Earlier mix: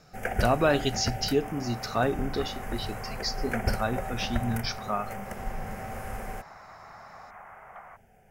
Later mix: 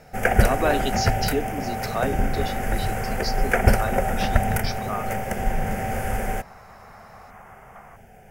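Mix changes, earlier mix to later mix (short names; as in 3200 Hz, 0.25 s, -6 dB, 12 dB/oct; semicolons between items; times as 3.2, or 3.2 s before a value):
speech: add steep high-pass 240 Hz 96 dB/oct; first sound +11.0 dB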